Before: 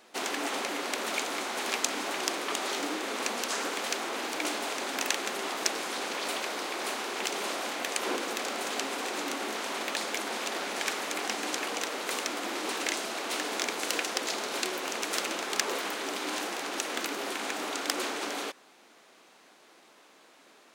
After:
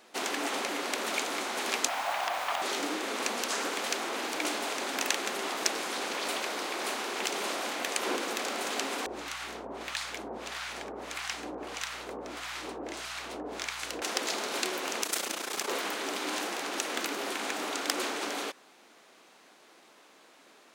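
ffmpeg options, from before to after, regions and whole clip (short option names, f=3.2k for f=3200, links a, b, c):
-filter_complex "[0:a]asettb=1/sr,asplit=3[a][b][c];[a]atrim=end=1.884[d];[b]atrim=start=1.88:end=2.62,asetpts=PTS-STARTPTS,afade=t=in:d=0.004:c=qsin,afade=t=out:st=0.736:d=0.004:c=qsin,acrossover=split=3600[e][f];[f]acompressor=threshold=-45dB:ratio=4:attack=1:release=60[g];[e][g]amix=inputs=2:normalize=0,lowshelf=f=520:t=q:w=3:g=-11,acrusher=bits=6:mix=0:aa=0.5[h];[c]atrim=start=2.616[i];[d][h]acrossfade=d=0.004:c1=hsin:c2=qsin[j];[j][i]acrossfade=d=0.004:c1=qsin:c2=hsin,asettb=1/sr,asplit=3[k][l][m];[k]atrim=end=9.064[n];[l]atrim=start=9.06:end=14.02,asetpts=PTS-STARTPTS,afade=t=in:d=0.004:c=qsin,afade=t=out:st=4.956:d=0.004:c=qsin,highshelf=f=8.2k:g=-6,acrossover=split=910[o][p];[o]aeval=exprs='val(0)*(1-1/2+1/2*cos(2*PI*1.6*n/s))':c=same[q];[p]aeval=exprs='val(0)*(1-1/2-1/2*cos(2*PI*1.6*n/s))':c=same[r];[q][r]amix=inputs=2:normalize=0,aeval=exprs='val(0)+0.00141*(sin(2*PI*60*n/s)+sin(2*PI*2*60*n/s)/2+sin(2*PI*3*60*n/s)/3+sin(2*PI*4*60*n/s)/4+sin(2*PI*5*60*n/s)/5)':c=same[s];[m]atrim=start=14.016[t];[n][s]acrossfade=d=0.004:c1=hsin:c2=qsin[u];[u][t]acrossfade=d=0.004:c1=qsin:c2=hsin,asettb=1/sr,asplit=3[v][w][x];[v]atrim=end=15.034[y];[w]atrim=start=15.03:end=15.68,asetpts=PTS-STARTPTS,afade=t=in:d=0.004:c=qsin,afade=t=out:st=0.646:d=0.004:c=qsin,highshelf=f=5.8k:g=10.5,tremolo=f=29:d=0.788[z];[x]atrim=start=15.676[aa];[y][z]acrossfade=d=0.004:c1=hsin:c2=qsin[ab];[ab][aa]acrossfade=d=0.004:c1=qsin:c2=hsin"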